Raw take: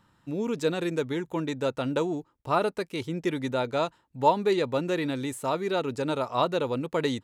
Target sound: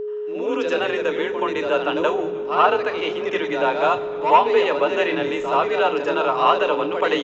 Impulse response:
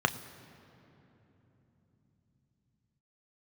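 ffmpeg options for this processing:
-filter_complex "[0:a]lowshelf=f=300:g=-12,aresample=16000,asoftclip=type=tanh:threshold=-18.5dB,aresample=44100,afreqshift=36,highpass=f=210:w=0.5412,highpass=f=210:w=1.3066,equalizer=f=220:t=q:w=4:g=-7,equalizer=f=2.8k:t=q:w=4:g=3,equalizer=f=4.2k:t=q:w=4:g=-9,lowpass=f=5.3k:w=0.5412,lowpass=f=5.3k:w=1.3066,asplit=4[a][b][c][d];[b]adelay=309,afreqshift=-140,volume=-22dB[e];[c]adelay=618,afreqshift=-280,volume=-28dB[f];[d]adelay=927,afreqshift=-420,volume=-34dB[g];[a][e][f][g]amix=inputs=4:normalize=0,asplit=2[h][i];[1:a]atrim=start_sample=2205,highshelf=f=5.9k:g=10,adelay=76[j];[i][j]afir=irnorm=-1:irlink=0,volume=-3dB[k];[h][k]amix=inputs=2:normalize=0,aeval=exprs='val(0)+0.0398*sin(2*PI*420*n/s)':c=same,volume=3dB"

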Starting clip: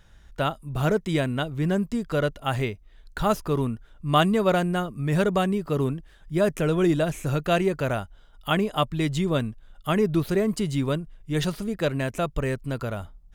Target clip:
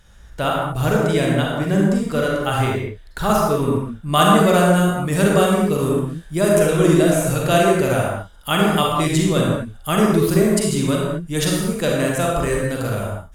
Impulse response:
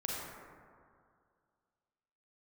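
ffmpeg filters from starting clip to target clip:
-filter_complex "[0:a]asetnsamples=n=441:p=0,asendcmd='4.14 equalizer g 13.5',equalizer=f=10k:w=0.58:g=7.5[a];[1:a]atrim=start_sample=2205,afade=t=out:st=0.29:d=0.01,atrim=end_sample=13230[b];[a][b]afir=irnorm=-1:irlink=0,volume=4dB"

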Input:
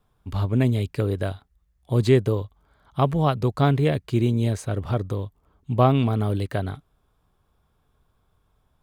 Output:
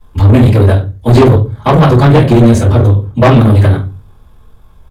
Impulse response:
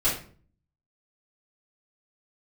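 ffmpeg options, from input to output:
-filter_complex "[1:a]atrim=start_sample=2205,asetrate=33957,aresample=44100[a];[0:a][a]afir=irnorm=-1:irlink=0,atempo=1.8,acontrast=88,volume=-1dB"

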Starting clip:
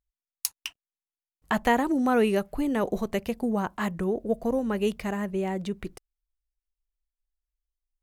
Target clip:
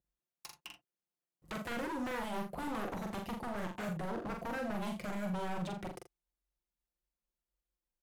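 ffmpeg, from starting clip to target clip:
-filter_complex "[0:a]highpass=100,tiltshelf=f=930:g=7,aecho=1:1:5.7:0.64,acrossover=split=900|4800[a][b][c];[a]acompressor=threshold=-32dB:ratio=4[d];[b]acompressor=threshold=-45dB:ratio=4[e];[c]acompressor=threshold=-55dB:ratio=4[f];[d][e][f]amix=inputs=3:normalize=0,asplit=2[g][h];[h]alimiter=level_in=2dB:limit=-24dB:level=0:latency=1:release=283,volume=-2dB,volume=1dB[i];[g][i]amix=inputs=2:normalize=0,aeval=exprs='0.0422*(abs(mod(val(0)/0.0422+3,4)-2)-1)':c=same,aecho=1:1:43.73|81.63:0.631|0.251,volume=-7dB"

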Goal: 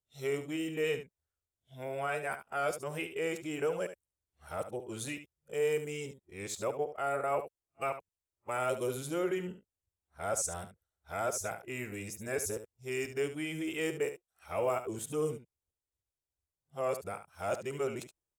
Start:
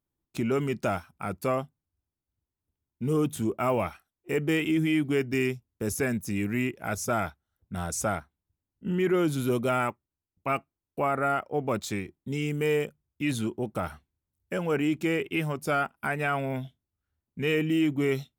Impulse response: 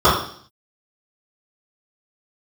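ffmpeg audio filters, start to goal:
-af "areverse,equalizer=f=125:t=o:w=1:g=-3,equalizer=f=250:t=o:w=1:g=-10,equalizer=f=500:t=o:w=1:g=8,equalizer=f=8k:t=o:w=1:g=9,aecho=1:1:72:0.282,volume=-8.5dB"

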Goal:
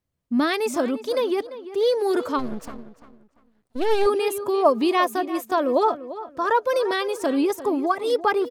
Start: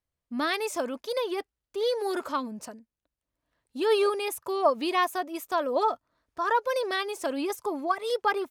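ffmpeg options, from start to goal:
-filter_complex "[0:a]equalizer=f=180:w=0.53:g=10,asplit=2[a][b];[b]adelay=344,lowpass=f=3.3k:p=1,volume=-14dB,asplit=2[c][d];[d]adelay=344,lowpass=f=3.3k:p=1,volume=0.29,asplit=2[e][f];[f]adelay=344,lowpass=f=3.3k:p=1,volume=0.29[g];[a][c][e][g]amix=inputs=4:normalize=0,asplit=3[h][i][j];[h]afade=t=out:st=2.38:d=0.02[k];[i]aeval=exprs='max(val(0),0)':c=same,afade=t=in:st=2.38:d=0.02,afade=t=out:st=4.05:d=0.02[l];[j]afade=t=in:st=4.05:d=0.02[m];[k][l][m]amix=inputs=3:normalize=0,volume=2.5dB"

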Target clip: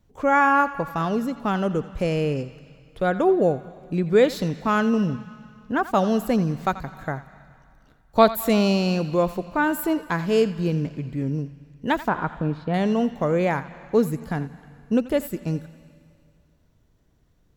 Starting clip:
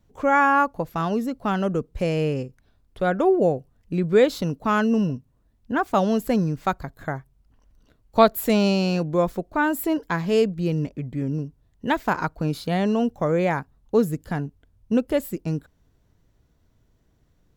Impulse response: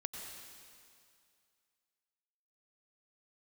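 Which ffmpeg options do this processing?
-filter_complex "[0:a]asettb=1/sr,asplit=3[a][b][c];[a]atrim=end=12.084[d];[b]atrim=start=12.08:end=12.74,asetpts=PTS-STARTPTS,afade=t=in:d=0.004:c=qsin,afade=t=out:st=0.656:d=0.004:c=qsin,lowpass=1.7k[e];[c]atrim=start=12.736[f];[d][e]acrossfade=d=0.004:c1=hsin:c2=qsin[g];[g][f]acrossfade=d=0.004:c1=qsin:c2=hsin,asplit=2[h][i];[i]equalizer=f=390:w=1.1:g=-11[j];[1:a]atrim=start_sample=2205,lowpass=7.5k,adelay=86[k];[j][k]afir=irnorm=-1:irlink=0,volume=-10.5dB[l];[h][l]amix=inputs=2:normalize=0"

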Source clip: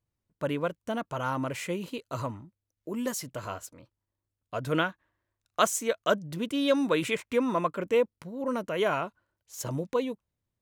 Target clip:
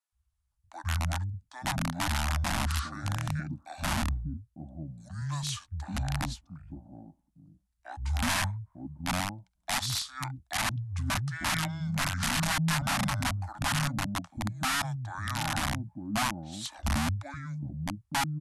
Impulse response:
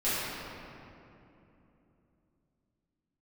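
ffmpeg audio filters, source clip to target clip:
-filter_complex "[0:a]equalizer=f=125:t=o:w=1:g=9,equalizer=f=1k:t=o:w=1:g=-3,equalizer=f=4k:t=o:w=1:g=-5,equalizer=f=8k:t=o:w=1:g=-4,acrossover=split=240|870[a][b][c];[a]adelay=70[d];[b]adelay=520[e];[d][e][c]amix=inputs=3:normalize=0,aeval=exprs='(mod(17.8*val(0)+1,2)-1)/17.8':c=same,asuperstop=centerf=740:order=4:qfactor=0.91,asetrate=25442,aresample=44100,volume=2.5dB"

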